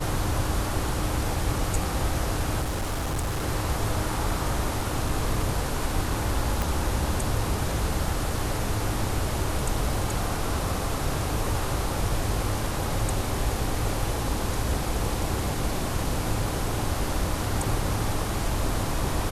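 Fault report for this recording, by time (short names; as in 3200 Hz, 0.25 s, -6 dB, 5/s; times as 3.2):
2.61–3.45 clipped -24 dBFS
6.62 pop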